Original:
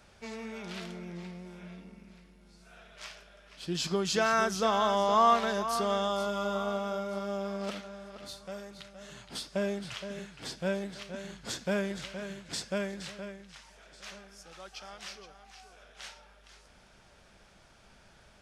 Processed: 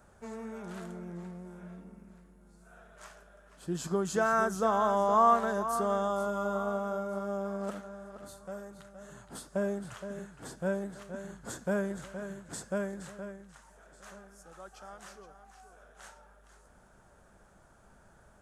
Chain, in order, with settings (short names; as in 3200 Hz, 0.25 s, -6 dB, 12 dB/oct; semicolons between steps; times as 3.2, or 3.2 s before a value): band shelf 3400 Hz -14 dB